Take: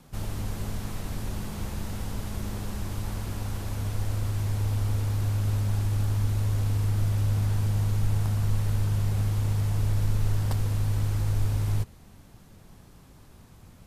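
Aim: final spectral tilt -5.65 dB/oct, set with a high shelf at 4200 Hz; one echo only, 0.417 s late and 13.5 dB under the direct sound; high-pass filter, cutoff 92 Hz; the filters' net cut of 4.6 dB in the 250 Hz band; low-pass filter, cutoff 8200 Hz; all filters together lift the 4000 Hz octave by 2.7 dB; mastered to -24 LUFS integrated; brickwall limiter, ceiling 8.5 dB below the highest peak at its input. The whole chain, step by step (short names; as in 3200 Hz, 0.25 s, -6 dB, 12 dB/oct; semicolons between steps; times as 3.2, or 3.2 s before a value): HPF 92 Hz; LPF 8200 Hz; bell 250 Hz -6.5 dB; bell 4000 Hz +6 dB; high shelf 4200 Hz -4 dB; limiter -29 dBFS; echo 0.417 s -13.5 dB; gain +12.5 dB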